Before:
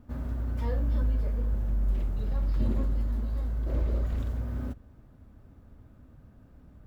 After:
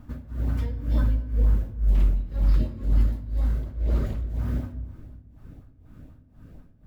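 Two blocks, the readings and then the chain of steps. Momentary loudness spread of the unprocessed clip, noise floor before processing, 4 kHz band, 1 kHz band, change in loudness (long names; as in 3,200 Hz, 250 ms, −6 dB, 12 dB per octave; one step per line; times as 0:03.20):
6 LU, −55 dBFS, can't be measured, +0.5 dB, +4.5 dB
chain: amplitude tremolo 2 Hz, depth 96%
auto-filter notch saw up 4.1 Hz 360–1,600 Hz
rectangular room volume 600 cubic metres, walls mixed, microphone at 0.52 metres
level +8.5 dB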